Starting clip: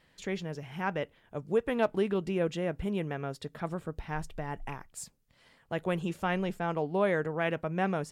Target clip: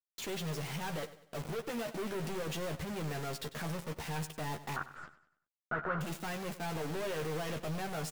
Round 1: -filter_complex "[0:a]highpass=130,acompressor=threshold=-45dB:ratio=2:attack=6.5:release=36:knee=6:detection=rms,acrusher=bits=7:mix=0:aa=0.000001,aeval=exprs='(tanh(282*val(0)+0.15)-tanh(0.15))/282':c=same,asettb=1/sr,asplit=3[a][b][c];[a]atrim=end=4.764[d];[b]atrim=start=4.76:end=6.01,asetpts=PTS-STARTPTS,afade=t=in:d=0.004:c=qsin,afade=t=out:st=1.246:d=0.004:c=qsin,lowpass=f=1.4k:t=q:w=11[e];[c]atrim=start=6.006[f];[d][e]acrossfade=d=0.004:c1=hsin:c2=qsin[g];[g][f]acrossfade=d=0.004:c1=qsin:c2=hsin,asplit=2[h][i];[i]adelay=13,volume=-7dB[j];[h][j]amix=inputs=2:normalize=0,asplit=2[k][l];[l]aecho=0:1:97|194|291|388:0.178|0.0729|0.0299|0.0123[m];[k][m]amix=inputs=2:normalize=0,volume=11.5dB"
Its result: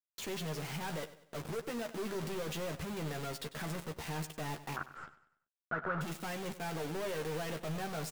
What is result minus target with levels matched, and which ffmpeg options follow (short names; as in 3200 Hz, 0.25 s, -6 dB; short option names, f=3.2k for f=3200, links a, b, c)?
compressor: peak gain reduction +6 dB
-filter_complex "[0:a]highpass=130,acompressor=threshold=-33dB:ratio=2:attack=6.5:release=36:knee=6:detection=rms,acrusher=bits=7:mix=0:aa=0.000001,aeval=exprs='(tanh(282*val(0)+0.15)-tanh(0.15))/282':c=same,asettb=1/sr,asplit=3[a][b][c];[a]atrim=end=4.764[d];[b]atrim=start=4.76:end=6.01,asetpts=PTS-STARTPTS,afade=t=in:d=0.004:c=qsin,afade=t=out:st=1.246:d=0.004:c=qsin,lowpass=f=1.4k:t=q:w=11[e];[c]atrim=start=6.006[f];[d][e]acrossfade=d=0.004:c1=hsin:c2=qsin[g];[g][f]acrossfade=d=0.004:c1=qsin:c2=hsin,asplit=2[h][i];[i]adelay=13,volume=-7dB[j];[h][j]amix=inputs=2:normalize=0,asplit=2[k][l];[l]aecho=0:1:97|194|291|388:0.178|0.0729|0.0299|0.0123[m];[k][m]amix=inputs=2:normalize=0,volume=11.5dB"